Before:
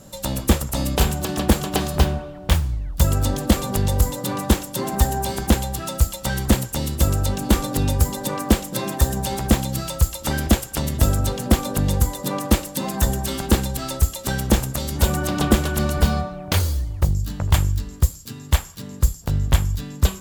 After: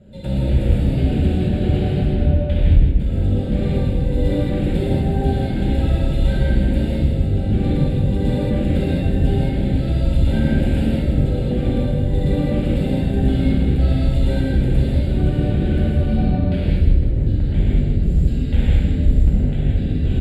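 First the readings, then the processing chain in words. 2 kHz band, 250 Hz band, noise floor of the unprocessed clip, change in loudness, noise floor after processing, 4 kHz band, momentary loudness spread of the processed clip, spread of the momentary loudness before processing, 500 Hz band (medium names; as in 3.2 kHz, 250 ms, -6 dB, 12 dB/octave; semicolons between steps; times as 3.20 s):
-4.5 dB, +4.0 dB, -38 dBFS, +3.0 dB, -21 dBFS, -8.0 dB, 2 LU, 5 LU, +2.5 dB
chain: octave divider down 1 oct, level +1 dB; gate -32 dBFS, range -8 dB; high-pass 150 Hz 6 dB/octave; tilt EQ -2.5 dB/octave; reverse; compression 5:1, threshold -20 dBFS, peak gain reduction 14.5 dB; reverse; peak limiter -17 dBFS, peak gain reduction 7 dB; gain riding within 4 dB 0.5 s; flange 1.9 Hz, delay 1.5 ms, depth 5.2 ms, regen -44%; distance through air 84 m; static phaser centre 2.6 kHz, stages 4; on a send: feedback delay 158 ms, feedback 42%, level -6.5 dB; on the sum: gated-style reverb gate 250 ms flat, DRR -8 dB; trim +4 dB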